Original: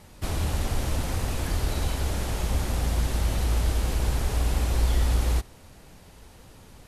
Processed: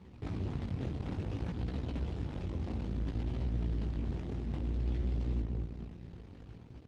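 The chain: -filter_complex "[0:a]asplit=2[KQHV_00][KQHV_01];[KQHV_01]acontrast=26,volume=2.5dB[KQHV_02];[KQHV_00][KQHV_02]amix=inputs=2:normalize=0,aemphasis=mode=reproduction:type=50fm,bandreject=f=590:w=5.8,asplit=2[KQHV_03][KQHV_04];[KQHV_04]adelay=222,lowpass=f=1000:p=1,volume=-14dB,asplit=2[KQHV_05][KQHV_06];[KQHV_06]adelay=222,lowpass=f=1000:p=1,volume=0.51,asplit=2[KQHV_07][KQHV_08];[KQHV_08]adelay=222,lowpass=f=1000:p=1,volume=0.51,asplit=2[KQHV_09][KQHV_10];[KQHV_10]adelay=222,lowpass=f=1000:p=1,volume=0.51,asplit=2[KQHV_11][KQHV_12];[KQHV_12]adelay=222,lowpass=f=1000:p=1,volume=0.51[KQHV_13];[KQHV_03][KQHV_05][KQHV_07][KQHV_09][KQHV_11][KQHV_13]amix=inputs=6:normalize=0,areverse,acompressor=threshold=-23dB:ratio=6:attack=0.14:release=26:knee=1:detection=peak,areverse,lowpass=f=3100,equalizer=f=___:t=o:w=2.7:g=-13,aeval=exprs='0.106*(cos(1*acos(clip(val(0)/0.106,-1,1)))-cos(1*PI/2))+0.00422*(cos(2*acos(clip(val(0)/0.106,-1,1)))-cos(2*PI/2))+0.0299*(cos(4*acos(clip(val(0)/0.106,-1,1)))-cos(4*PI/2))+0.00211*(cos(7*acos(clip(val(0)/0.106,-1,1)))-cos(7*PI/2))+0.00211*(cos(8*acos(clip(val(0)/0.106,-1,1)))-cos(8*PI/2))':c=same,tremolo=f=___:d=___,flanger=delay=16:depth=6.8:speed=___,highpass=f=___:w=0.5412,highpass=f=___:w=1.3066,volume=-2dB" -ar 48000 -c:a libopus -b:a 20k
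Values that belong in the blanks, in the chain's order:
1200, 290, 0.333, 0.58, 62, 62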